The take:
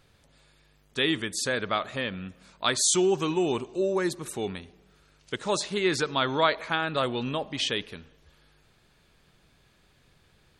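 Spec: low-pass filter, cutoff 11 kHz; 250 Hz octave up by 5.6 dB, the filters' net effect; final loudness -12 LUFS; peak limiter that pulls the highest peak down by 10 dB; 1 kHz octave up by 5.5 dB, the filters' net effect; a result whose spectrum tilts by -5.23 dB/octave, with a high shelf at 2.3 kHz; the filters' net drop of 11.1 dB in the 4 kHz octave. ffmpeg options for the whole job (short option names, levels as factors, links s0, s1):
-af "lowpass=11000,equalizer=f=250:t=o:g=8,equalizer=f=1000:t=o:g=8.5,highshelf=f=2300:g=-8,equalizer=f=4000:t=o:g=-7.5,volume=5.62,alimiter=limit=1:level=0:latency=1"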